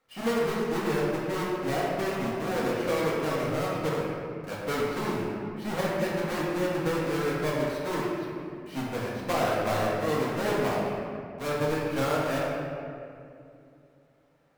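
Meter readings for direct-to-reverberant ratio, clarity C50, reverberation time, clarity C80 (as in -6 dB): -7.0 dB, -2.0 dB, 2.5 s, 0.0 dB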